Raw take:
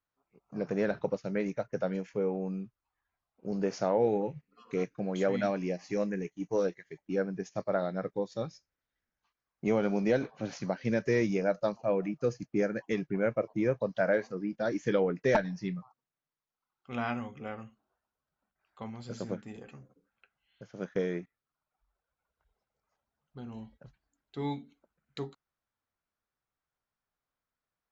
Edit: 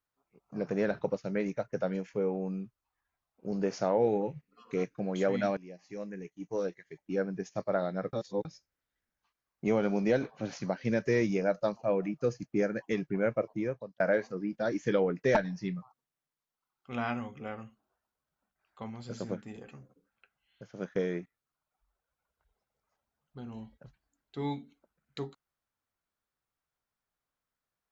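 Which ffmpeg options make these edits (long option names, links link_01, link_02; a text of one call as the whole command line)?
ffmpeg -i in.wav -filter_complex "[0:a]asplit=5[link_01][link_02][link_03][link_04][link_05];[link_01]atrim=end=5.57,asetpts=PTS-STARTPTS,afade=type=out:start_time=5.566:duration=0.004:curve=hsin:silence=0.133352[link_06];[link_02]atrim=start=5.57:end=8.132,asetpts=PTS-STARTPTS,afade=type=in:duration=1.76:silence=0.133352[link_07];[link_03]atrim=start=8.128:end=8.452,asetpts=PTS-STARTPTS,areverse[link_08];[link_04]atrim=start=8.448:end=14,asetpts=PTS-STARTPTS,afade=type=out:start_time=4.972:duration=0.58[link_09];[link_05]atrim=start=14,asetpts=PTS-STARTPTS,afade=type=in:duration=0.004:curve=hsin[link_10];[link_06][link_07]concat=n=2:v=0:a=1[link_11];[link_11][link_08]acrossfade=duration=0.004:curve1=hsin:curve2=hsin[link_12];[link_09][link_10]concat=n=2:v=0:a=1[link_13];[link_12][link_13]acrossfade=duration=0.004:curve1=hsin:curve2=hsin" out.wav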